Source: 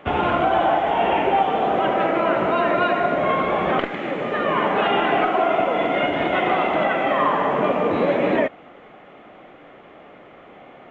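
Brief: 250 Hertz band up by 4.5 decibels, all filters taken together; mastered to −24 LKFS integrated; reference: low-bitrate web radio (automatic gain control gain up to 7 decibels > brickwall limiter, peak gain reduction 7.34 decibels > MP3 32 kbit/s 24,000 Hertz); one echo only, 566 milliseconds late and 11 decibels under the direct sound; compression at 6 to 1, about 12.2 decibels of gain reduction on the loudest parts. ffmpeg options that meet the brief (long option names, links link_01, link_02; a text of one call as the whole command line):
ffmpeg -i in.wav -af "equalizer=frequency=250:width_type=o:gain=6,acompressor=threshold=-27dB:ratio=6,aecho=1:1:566:0.282,dynaudnorm=maxgain=7dB,alimiter=limit=-24dB:level=0:latency=1,volume=9.5dB" -ar 24000 -c:a libmp3lame -b:a 32k out.mp3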